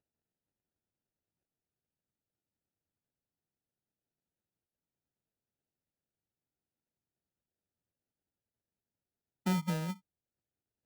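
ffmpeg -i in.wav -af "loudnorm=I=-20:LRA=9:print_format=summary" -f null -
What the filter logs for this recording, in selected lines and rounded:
Input Integrated:    -35.3 LUFS
Input True Peak:     -21.6 dBTP
Input LRA:             0.0 LU
Input Threshold:     -45.8 LUFS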